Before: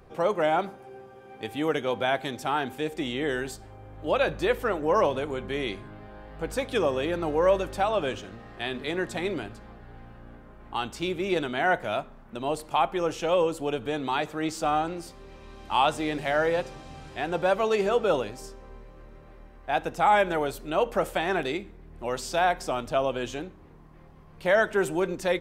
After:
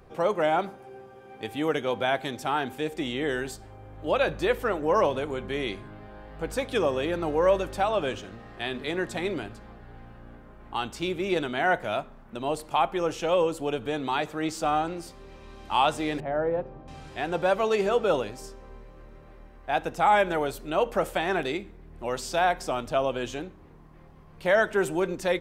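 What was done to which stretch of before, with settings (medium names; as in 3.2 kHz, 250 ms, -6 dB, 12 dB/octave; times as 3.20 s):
16.20–16.88 s: Bessel low-pass 750 Hz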